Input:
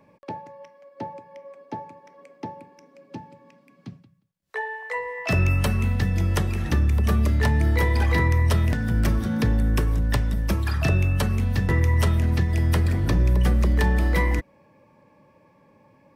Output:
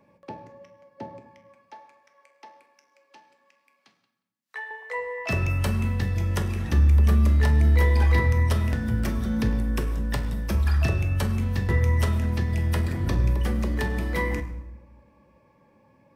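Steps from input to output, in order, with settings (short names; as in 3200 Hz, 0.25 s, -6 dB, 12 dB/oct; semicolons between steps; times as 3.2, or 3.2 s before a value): 1.26–4.71 HPF 990 Hz 12 dB/oct; reverb RT60 0.95 s, pre-delay 7 ms, DRR 6.5 dB; gain -4 dB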